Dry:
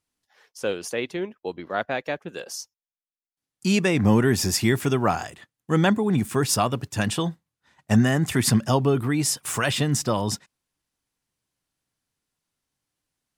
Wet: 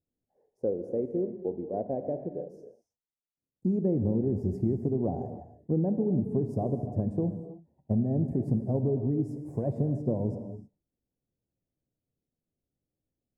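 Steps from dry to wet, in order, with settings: inverse Chebyshev low-pass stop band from 1.2 kHz, stop band 40 dB; compression, threshold -24 dBFS, peak gain reduction 11 dB; gated-style reverb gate 340 ms flat, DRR 7.5 dB

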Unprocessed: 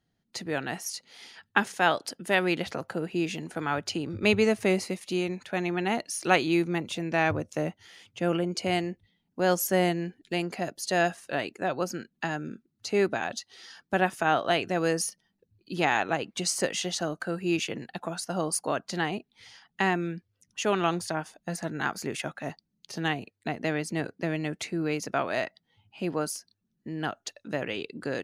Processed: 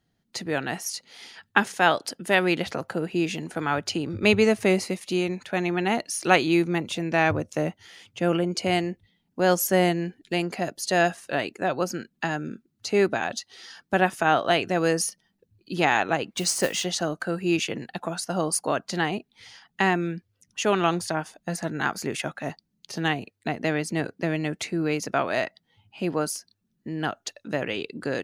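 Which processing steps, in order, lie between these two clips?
16.31–16.84 s: modulation noise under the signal 18 dB; trim +3.5 dB

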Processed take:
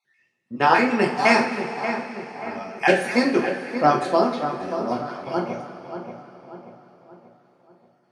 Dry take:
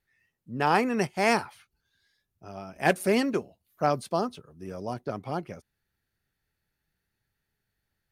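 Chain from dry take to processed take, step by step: random holes in the spectrogram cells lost 24%; band-pass 210–6200 Hz; on a send: filtered feedback delay 583 ms, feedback 46%, low-pass 2.5 kHz, level -9 dB; on the sum: two-slope reverb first 0.38 s, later 4.3 s, from -18 dB, DRR -1.5 dB; trim +5 dB

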